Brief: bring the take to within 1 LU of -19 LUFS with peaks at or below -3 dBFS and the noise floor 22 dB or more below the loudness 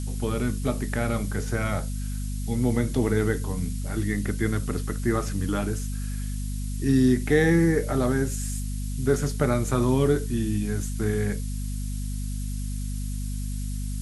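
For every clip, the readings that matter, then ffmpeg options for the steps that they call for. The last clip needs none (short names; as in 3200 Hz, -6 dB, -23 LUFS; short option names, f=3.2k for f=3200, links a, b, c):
hum 50 Hz; harmonics up to 250 Hz; hum level -28 dBFS; noise floor -30 dBFS; noise floor target -49 dBFS; loudness -26.5 LUFS; peak -8.0 dBFS; loudness target -19.0 LUFS
-> -af "bandreject=f=50:t=h:w=4,bandreject=f=100:t=h:w=4,bandreject=f=150:t=h:w=4,bandreject=f=200:t=h:w=4,bandreject=f=250:t=h:w=4"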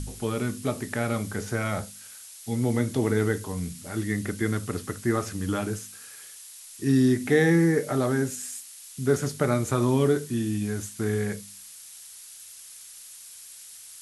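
hum none; noise floor -46 dBFS; noise floor target -49 dBFS
-> -af "afftdn=nr=6:nf=-46"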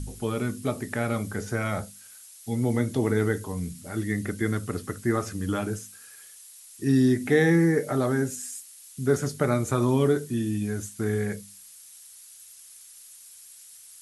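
noise floor -49 dBFS; loudness -26.5 LUFS; peak -8.5 dBFS; loudness target -19.0 LUFS
-> -af "volume=7.5dB,alimiter=limit=-3dB:level=0:latency=1"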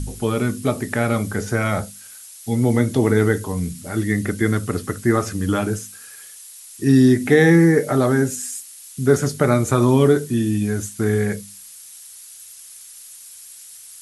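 loudness -19.0 LUFS; peak -3.0 dBFS; noise floor -41 dBFS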